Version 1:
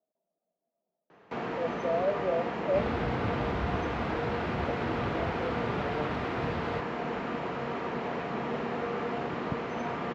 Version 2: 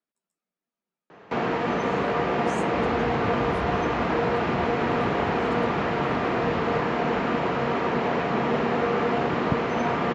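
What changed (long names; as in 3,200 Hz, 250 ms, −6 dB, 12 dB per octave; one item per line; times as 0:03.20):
speech: remove low-pass with resonance 650 Hz, resonance Q 7.8
first sound +9.0 dB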